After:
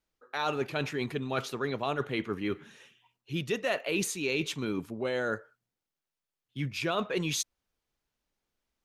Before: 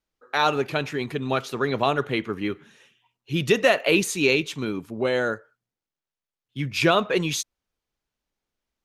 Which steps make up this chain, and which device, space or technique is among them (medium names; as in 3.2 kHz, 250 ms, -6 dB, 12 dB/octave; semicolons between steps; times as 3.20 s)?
compression on the reversed sound (reverse; compression 4:1, threshold -29 dBFS, peak gain reduction 13.5 dB; reverse)